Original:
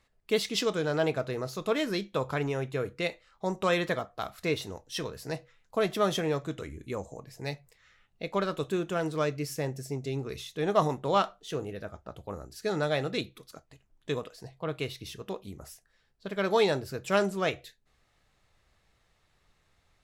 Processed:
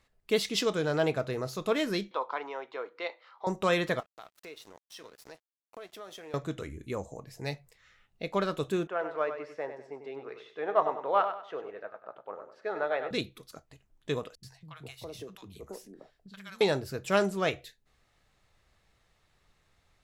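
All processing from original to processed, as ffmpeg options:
-filter_complex "[0:a]asettb=1/sr,asplit=3[a][b][c];[a]atrim=end=2.114[d];[b]atrim=start=2.11:end=3.47,asetpts=PTS-STARTPTS,afade=t=in:d=0.004:c=qsin,afade=t=out:st=1.356:d=0.004:c=qsin,highpass=f=420:w=0.5412,highpass=f=420:w=1.3066,equalizer=f=420:t=q:w=4:g=-6,equalizer=f=600:t=q:w=4:g=-5,equalizer=f=970:t=q:w=4:g=7,equalizer=f=1.7k:t=q:w=4:g=-5,equalizer=f=2.6k:t=q:w=4:g=-8,equalizer=f=3.7k:t=q:w=4:g=-4,lowpass=f=4k:w=0.5412,lowpass=f=4k:w=1.3066,acompressor=mode=upward:threshold=-45dB:ratio=2.5:attack=3.2:release=140:knee=2.83:detection=peak[e];[c]atrim=start=3.466[f];[d][e]acrossfade=d=0.004:c1=hsin:c2=qsin[g];[g][f]acrossfade=d=0.004:c1=qsin:c2=hsin,asettb=1/sr,asplit=3[h][i][j];[h]atrim=end=4.004[k];[i]atrim=start=4:end=6.34,asetpts=PTS-STARTPTS,afade=t=in:d=0.004:c=qsin,afade=t=out:st=2.336:d=0.004:c=qsin,highpass=370,aeval=exprs='sgn(val(0))*max(abs(val(0))-0.00473,0)':c=same,acompressor=threshold=-47dB:ratio=3:attack=3.2:release=140:knee=1:detection=peak[l];[j]atrim=start=6.336[m];[k][l]acrossfade=d=0.004:c1=hsin:c2=qsin[n];[n][m]acrossfade=d=0.004:c1=qsin:c2=hsin,asettb=1/sr,asplit=3[o][p][q];[o]atrim=end=8.874[r];[p]atrim=start=8.87:end=13.11,asetpts=PTS-STARTPTS,afade=t=in:d=0.004:c=qsin,afade=t=out:st=4.236:d=0.004:c=qsin,asuperpass=centerf=970:order=4:qfactor=0.64,aecho=1:1:97|194|291|388:0.355|0.114|0.0363|0.0116,atrim=end_sample=186984[s];[q]atrim=start=13.106[t];[r][s]acrossfade=d=0.004:c1=hsin:c2=qsin[u];[u][t]acrossfade=d=0.004:c1=qsin:c2=hsin,asettb=1/sr,asplit=3[v][w][x];[v]atrim=end=14.354[y];[w]atrim=start=14.35:end=16.61,asetpts=PTS-STARTPTS,afade=t=in:d=0.004:c=qsin,afade=t=out:st=2.256:d=0.004:c=qsin,acrossover=split=220|1400|5600[z][aa][ab][ac];[z]acompressor=threshold=-50dB:ratio=3[ad];[aa]acompressor=threshold=-41dB:ratio=3[ae];[ab]acompressor=threshold=-53dB:ratio=3[af];[ac]acompressor=threshold=-55dB:ratio=3[ag];[ad][ae][af][ag]amix=inputs=4:normalize=0,acrossover=split=200|970[ah][ai][aj];[aj]adelay=80[ak];[ai]adelay=410[al];[ah][al][ak]amix=inputs=3:normalize=0,atrim=end_sample=99666[am];[x]atrim=start=16.606[an];[y][am]acrossfade=d=0.004:c1=hsin:c2=qsin[ao];[ao][an]acrossfade=d=0.004:c1=qsin:c2=hsin"

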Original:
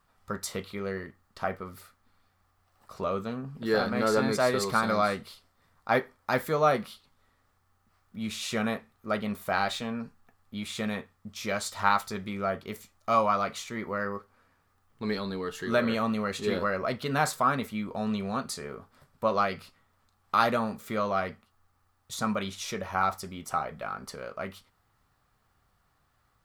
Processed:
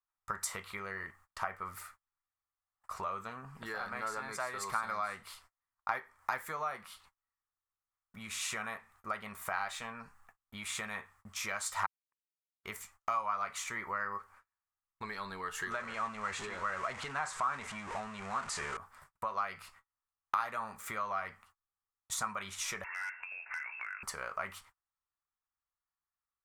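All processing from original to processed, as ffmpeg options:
-filter_complex "[0:a]asettb=1/sr,asplit=3[a][b][c];[a]atrim=end=11.864[d];[b]atrim=start=11.86:end=12.64,asetpts=PTS-STARTPTS,afade=t=in:d=0.004:c=qsin,afade=t=out:st=0.776:d=0.004:c=qsin,asuperpass=centerf=320:order=8:qfactor=2.2,acrusher=bits=4:mix=0:aa=0.5[e];[c]atrim=start=12.636[f];[d][e]acrossfade=d=0.004:c1=hsin:c2=qsin[g];[g][f]acrossfade=d=0.004:c1=qsin:c2=hsin,asettb=1/sr,asplit=3[h][i][j];[h]atrim=end=15.714[k];[i]atrim=start=15.71:end=18.77,asetpts=PTS-STARTPTS,afade=t=in:d=0.004:c=qsin,afade=t=out:st=3.056:d=0.004:c=qsin,aeval=exprs='val(0)+0.5*0.0266*sgn(val(0))':c=same,lowpass=f=8.7k:w=0.5412,lowpass=f=8.7k:w=1.3066,highshelf=f=6k:g=-6.5[l];[j]atrim=start=18.766[m];[k][l]acrossfade=d=0.004:c1=hsin:c2=qsin[n];[n][m]acrossfade=d=0.004:c1=qsin:c2=hsin,asettb=1/sr,asplit=3[o][p][q];[o]atrim=end=22.844[r];[p]atrim=start=22.84:end=24.03,asetpts=PTS-STARTPTS,afade=t=in:d=0.004:c=qsin,afade=t=out:st=1.186:d=0.004:c=qsin,lowpass=f=2.4k:t=q:w=0.5098,lowpass=f=2.4k:t=q:w=0.6013,lowpass=f=2.4k:t=q:w=0.9,lowpass=f=2.4k:t=q:w=2.563,afreqshift=-2800,asoftclip=type=hard:threshold=-24dB,acompressor=threshold=-43dB:ratio=10:attack=3.2:release=140:knee=1:detection=peak[s];[q]atrim=start=24.026[t];[r][s]acrossfade=d=0.004:c1=hsin:c2=qsin[u];[u][t]acrossfade=d=0.004:c1=qsin:c2=hsin,agate=range=-32dB:threshold=-59dB:ratio=16:detection=peak,acompressor=threshold=-35dB:ratio=12,equalizer=f=125:t=o:w=1:g=-6,equalizer=f=250:t=o:w=1:g=-11,equalizer=f=500:t=o:w=1:g=-7,equalizer=f=1k:t=o:w=1:g=8,equalizer=f=2k:t=o:w=1:g=6,equalizer=f=4k:t=o:w=1:g=-6,equalizer=f=8k:t=o:w=1:g=7"

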